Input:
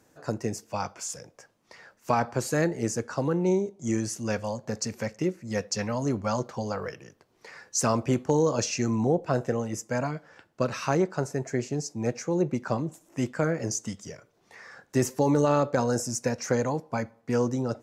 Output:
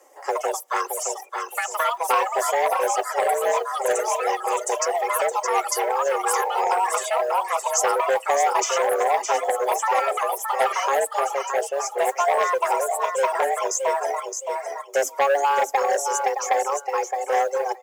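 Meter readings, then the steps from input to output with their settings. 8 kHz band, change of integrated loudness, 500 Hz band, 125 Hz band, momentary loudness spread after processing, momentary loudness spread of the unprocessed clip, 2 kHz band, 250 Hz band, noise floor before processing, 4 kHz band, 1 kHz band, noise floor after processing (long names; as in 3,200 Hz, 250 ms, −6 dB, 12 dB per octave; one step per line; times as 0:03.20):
+6.5 dB, +5.5 dB, +5.5 dB, below −35 dB, 6 LU, 10 LU, +9.5 dB, below −15 dB, −66 dBFS, +6.0 dB, +13.5 dB, −41 dBFS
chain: comb filter 3.7 ms, depth 50%
frequency shifter +270 Hz
delay with pitch and tempo change per echo 128 ms, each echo +4 semitones, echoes 2
on a send: repeating echo 617 ms, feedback 28%, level −7 dB
on the sum: reverb reduction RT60 0.9 s
thirty-one-band graphic EQ 1,600 Hz −6 dB, 2,500 Hz −4 dB, 4,000 Hz −11 dB
noise that follows the level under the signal 32 dB
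in parallel at −2 dB: downward compressor, threshold −33 dBFS, peak gain reduction 14.5 dB
on the sum: dynamic equaliser 9,000 Hz, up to −5 dB, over −51 dBFS, Q 4.7
high-pass filter 58 Hz
healed spectral selection 0:06.33–0:06.68, 430–930 Hz both
saturating transformer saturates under 1,400 Hz
level +3 dB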